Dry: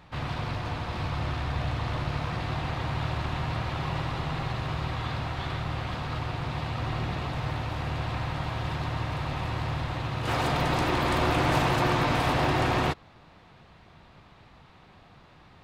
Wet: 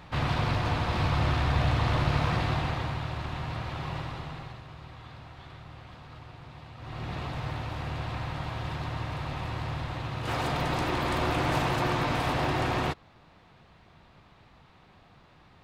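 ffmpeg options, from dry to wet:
ffmpeg -i in.wav -af "volume=16dB,afade=type=out:start_time=2.32:duration=0.71:silence=0.375837,afade=type=out:start_time=3.94:duration=0.7:silence=0.298538,afade=type=in:start_time=6.78:duration=0.4:silence=0.266073" out.wav

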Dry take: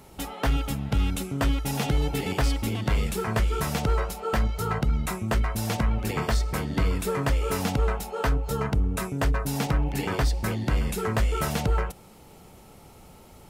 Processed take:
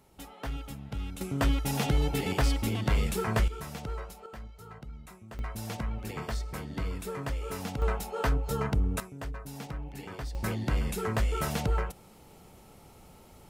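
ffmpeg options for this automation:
ffmpeg -i in.wav -af "asetnsamples=nb_out_samples=441:pad=0,asendcmd='1.21 volume volume -2dB;3.48 volume volume -12.5dB;4.26 volume volume -20dB;5.39 volume volume -9.5dB;7.82 volume volume -3dB;9 volume volume -14dB;10.35 volume volume -4dB',volume=-12dB" out.wav

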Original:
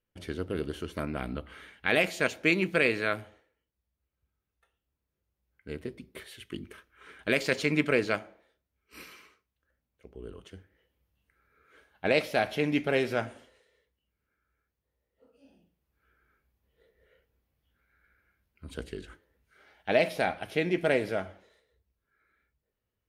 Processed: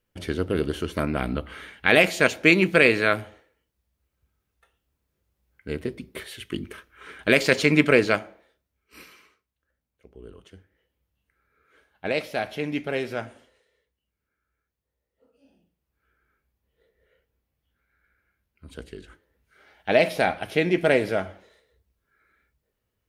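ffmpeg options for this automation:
ffmpeg -i in.wav -af "volume=15dB,afade=type=out:start_time=7.95:duration=1.17:silence=0.354813,afade=type=in:start_time=19.02:duration=1.1:silence=0.446684" out.wav

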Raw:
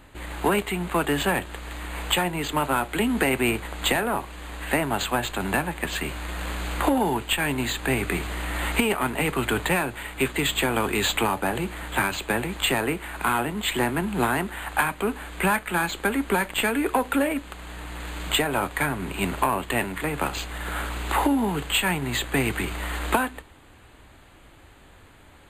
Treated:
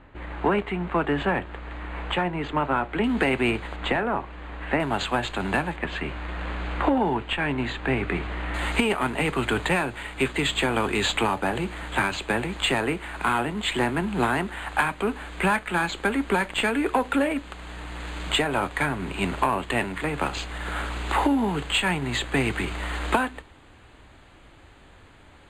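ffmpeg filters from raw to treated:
ffmpeg -i in.wav -af "asetnsamples=nb_out_samples=441:pad=0,asendcmd='3.04 lowpass f 4300;3.76 lowpass f 2300;4.8 lowpass f 5300;5.76 lowpass f 2700;8.54 lowpass f 6900',lowpass=2200" out.wav

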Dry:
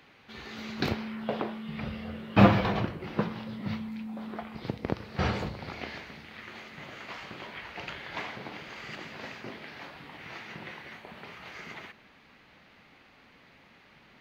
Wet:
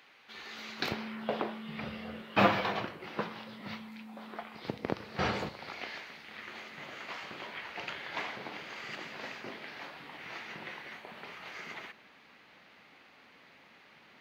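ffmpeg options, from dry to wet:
ffmpeg -i in.wav -af "asetnsamples=nb_out_samples=441:pad=0,asendcmd='0.92 highpass f 290;2.22 highpass f 670;4.67 highpass f 270;5.49 highpass f 730;6.28 highpass f 300',highpass=frequency=850:poles=1" out.wav

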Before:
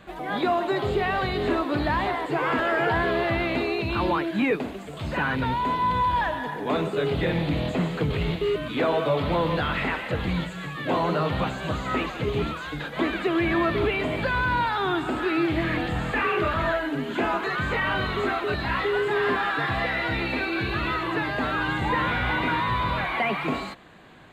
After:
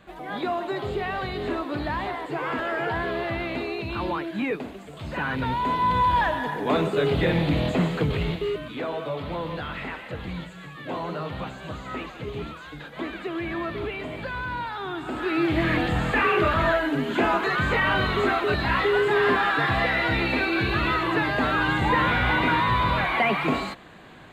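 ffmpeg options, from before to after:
ffmpeg -i in.wav -af "volume=12.5dB,afade=type=in:start_time=5.06:duration=1.05:silence=0.473151,afade=type=out:start_time=7.85:duration=0.95:silence=0.334965,afade=type=in:start_time=14.96:duration=0.74:silence=0.316228" out.wav

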